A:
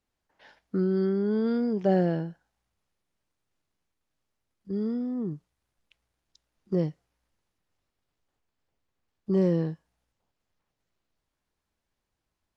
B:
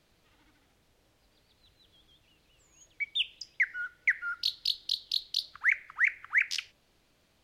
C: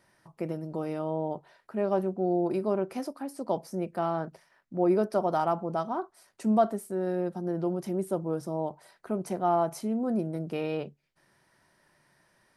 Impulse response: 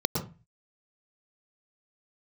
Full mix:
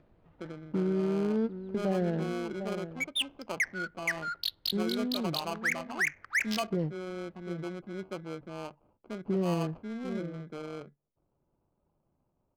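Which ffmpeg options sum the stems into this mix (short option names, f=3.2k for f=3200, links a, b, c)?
-filter_complex "[0:a]volume=-1.5dB,asplit=2[a][b];[b]volume=-14dB[c];[1:a]alimiter=limit=-20.5dB:level=0:latency=1:release=77,acompressor=mode=upward:threshold=-53dB:ratio=2.5,volume=0dB[d];[2:a]acrusher=samples=24:mix=1:aa=0.000001,volume=-8.5dB,asplit=2[e][f];[f]apad=whole_len=554232[g];[a][g]sidechaingate=range=-33dB:threshold=-53dB:ratio=16:detection=peak[h];[c]aecho=0:1:747:1[i];[h][d][e][i]amix=inputs=4:normalize=0,adynamicsmooth=sensitivity=6.5:basefreq=1k,alimiter=limit=-21.5dB:level=0:latency=1:release=88"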